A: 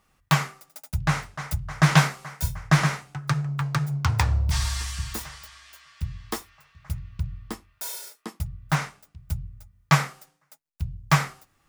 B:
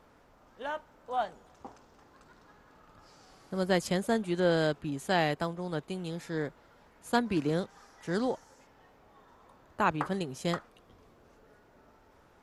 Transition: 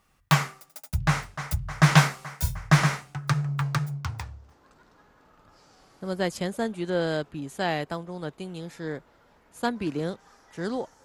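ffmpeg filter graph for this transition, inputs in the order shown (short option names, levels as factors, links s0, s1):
-filter_complex "[0:a]apad=whole_dur=11.04,atrim=end=11.04,atrim=end=4.62,asetpts=PTS-STARTPTS[s0];[1:a]atrim=start=1.2:end=8.54,asetpts=PTS-STARTPTS[s1];[s0][s1]acrossfade=d=0.92:c1=qua:c2=qua"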